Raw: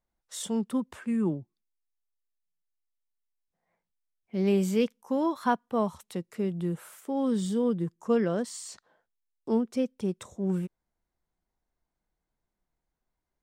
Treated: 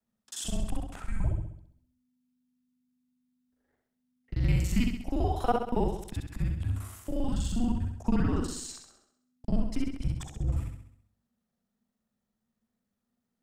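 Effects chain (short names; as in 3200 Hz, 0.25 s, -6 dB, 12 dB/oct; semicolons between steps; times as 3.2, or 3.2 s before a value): local time reversal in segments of 40 ms; flutter echo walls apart 11.3 m, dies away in 0.66 s; frequency shift -250 Hz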